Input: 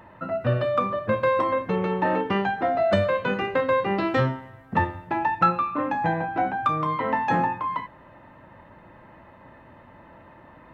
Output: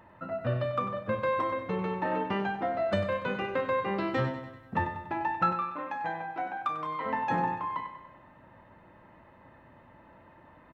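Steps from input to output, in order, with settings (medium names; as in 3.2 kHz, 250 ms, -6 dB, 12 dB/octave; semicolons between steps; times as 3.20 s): 5.52–7.06 s: high-pass 680 Hz 6 dB/octave; on a send: feedback delay 96 ms, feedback 53%, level -10 dB; on the sum: trim -7 dB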